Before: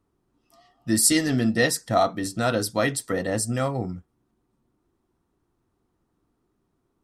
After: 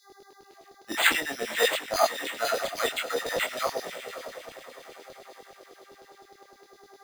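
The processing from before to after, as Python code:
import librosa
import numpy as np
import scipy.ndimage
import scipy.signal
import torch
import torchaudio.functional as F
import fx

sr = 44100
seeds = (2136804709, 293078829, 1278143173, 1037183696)

p1 = fx.notch(x, sr, hz=4300.0, q=7.1)
p2 = p1 + fx.echo_diffused(p1, sr, ms=565, feedback_pct=51, wet_db=-10.5, dry=0)
p3 = fx.dmg_buzz(p2, sr, base_hz=400.0, harmonics=5, level_db=-48.0, tilt_db=-8, odd_only=False)
p4 = np.repeat(p3[::8], 8)[:len(p3)]
p5 = fx.filter_lfo_highpass(p4, sr, shape='saw_down', hz=9.8, low_hz=400.0, high_hz=4600.0, q=2.4)
y = fx.detune_double(p5, sr, cents=19)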